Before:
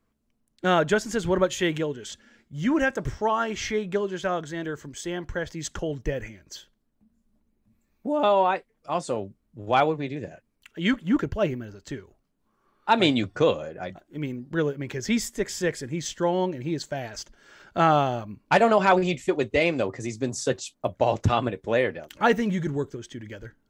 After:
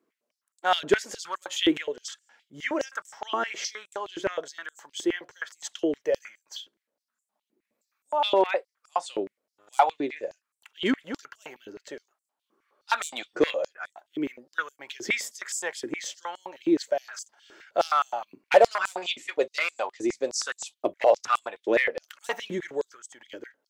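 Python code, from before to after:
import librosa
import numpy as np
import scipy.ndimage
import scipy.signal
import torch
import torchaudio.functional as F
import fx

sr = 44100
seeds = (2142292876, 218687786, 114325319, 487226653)

y = np.clip(x, -10.0 ** (-13.5 / 20.0), 10.0 ** (-13.5 / 20.0))
y = fx.filter_held_highpass(y, sr, hz=9.6, low_hz=340.0, high_hz=7800.0)
y = y * librosa.db_to_amplitude(-3.0)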